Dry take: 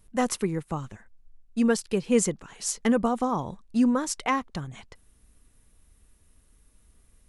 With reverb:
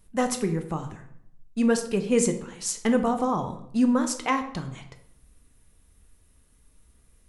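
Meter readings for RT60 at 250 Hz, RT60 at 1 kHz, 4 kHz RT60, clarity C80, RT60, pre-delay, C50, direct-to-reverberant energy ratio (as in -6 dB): 0.85 s, 0.65 s, 0.45 s, 13.5 dB, 0.70 s, 10 ms, 10.5 dB, 6.0 dB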